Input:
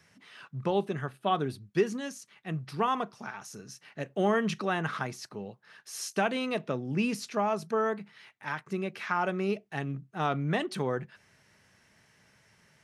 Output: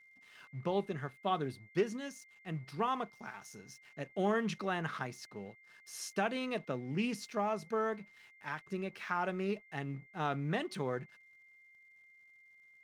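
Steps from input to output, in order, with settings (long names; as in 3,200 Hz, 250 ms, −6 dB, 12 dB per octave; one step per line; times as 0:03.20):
dead-zone distortion −58.5 dBFS
steady tone 2,100 Hz −54 dBFS
highs frequency-modulated by the lows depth 0.11 ms
level −5.5 dB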